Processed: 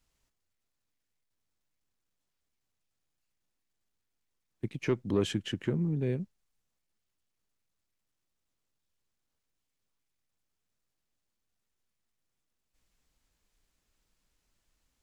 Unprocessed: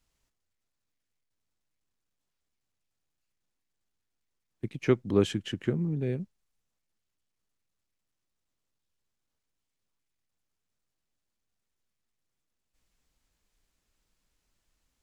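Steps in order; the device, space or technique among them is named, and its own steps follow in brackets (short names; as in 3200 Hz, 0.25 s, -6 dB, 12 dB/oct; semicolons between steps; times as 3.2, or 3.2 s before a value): soft clipper into limiter (soft clip -13.5 dBFS, distortion -19 dB; limiter -19 dBFS, peak gain reduction 4 dB)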